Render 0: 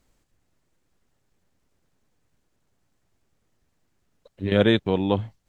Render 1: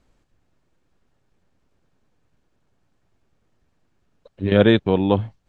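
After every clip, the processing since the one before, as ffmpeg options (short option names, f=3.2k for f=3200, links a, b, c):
-af "aemphasis=mode=reproduction:type=50fm,bandreject=f=2k:w=19,volume=4dB"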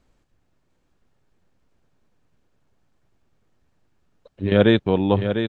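-af "aecho=1:1:700:0.398,volume=-1dB"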